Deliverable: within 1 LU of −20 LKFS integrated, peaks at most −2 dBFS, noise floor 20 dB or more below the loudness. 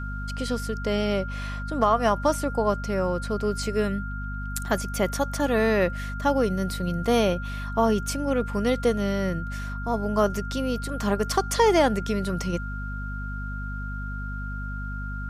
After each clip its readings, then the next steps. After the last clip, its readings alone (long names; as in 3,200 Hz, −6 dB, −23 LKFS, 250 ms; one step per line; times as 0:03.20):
mains hum 50 Hz; hum harmonics up to 250 Hz; level of the hum −30 dBFS; interfering tone 1,400 Hz; level of the tone −36 dBFS; integrated loudness −26.0 LKFS; sample peak −8.0 dBFS; target loudness −20.0 LKFS
→ hum removal 50 Hz, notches 5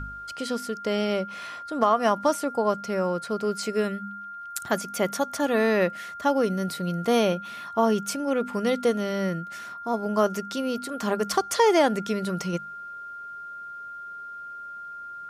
mains hum none found; interfering tone 1,400 Hz; level of the tone −36 dBFS
→ notch filter 1,400 Hz, Q 30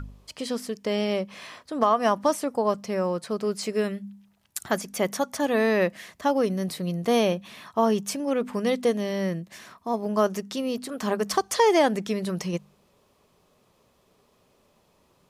interfering tone none found; integrated loudness −26.0 LKFS; sample peak −8.5 dBFS; target loudness −20.0 LKFS
→ level +6 dB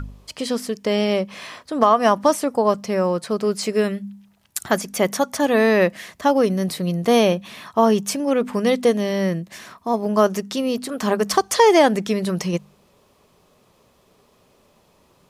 integrated loudness −20.0 LKFS; sample peak −2.5 dBFS; background noise floor −59 dBFS